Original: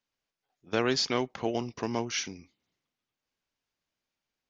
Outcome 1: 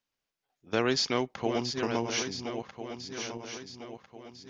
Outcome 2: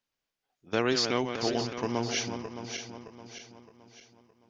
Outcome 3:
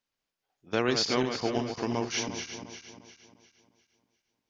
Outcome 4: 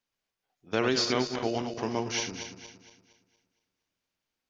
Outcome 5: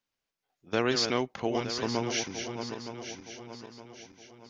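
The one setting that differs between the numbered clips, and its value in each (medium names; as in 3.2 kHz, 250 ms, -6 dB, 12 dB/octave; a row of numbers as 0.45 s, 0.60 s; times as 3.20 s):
backward echo that repeats, time: 675 ms, 308 ms, 176 ms, 116 ms, 458 ms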